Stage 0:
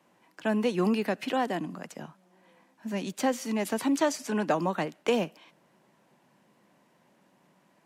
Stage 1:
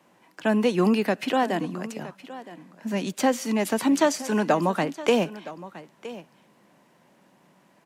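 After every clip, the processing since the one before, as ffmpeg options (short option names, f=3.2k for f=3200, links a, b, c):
-af "aecho=1:1:967:0.15,volume=5dB"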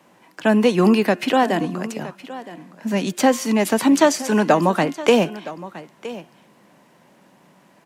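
-af "bandreject=f=354:t=h:w=4,bandreject=f=708:t=h:w=4,bandreject=f=1.062k:t=h:w=4,bandreject=f=1.416k:t=h:w=4,bandreject=f=1.77k:t=h:w=4,bandreject=f=2.124k:t=h:w=4,bandreject=f=2.478k:t=h:w=4,bandreject=f=2.832k:t=h:w=4,bandreject=f=3.186k:t=h:w=4,volume=6dB"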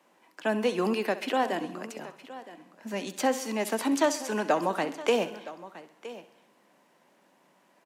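-af "highpass=280,aecho=1:1:65|130|195|260|325:0.178|0.0996|0.0558|0.0312|0.0175,volume=-9dB"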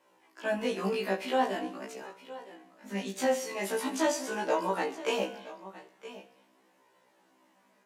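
-af "flanger=delay=17.5:depth=3.4:speed=0.43,afftfilt=real='re*1.73*eq(mod(b,3),0)':imag='im*1.73*eq(mod(b,3),0)':win_size=2048:overlap=0.75,volume=3dB"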